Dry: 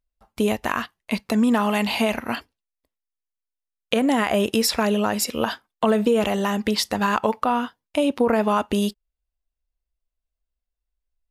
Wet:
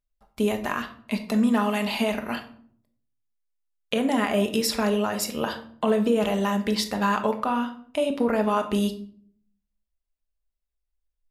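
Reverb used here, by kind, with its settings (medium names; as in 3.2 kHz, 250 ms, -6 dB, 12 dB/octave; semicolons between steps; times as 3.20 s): simulated room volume 720 m³, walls furnished, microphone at 1.3 m; trim -5 dB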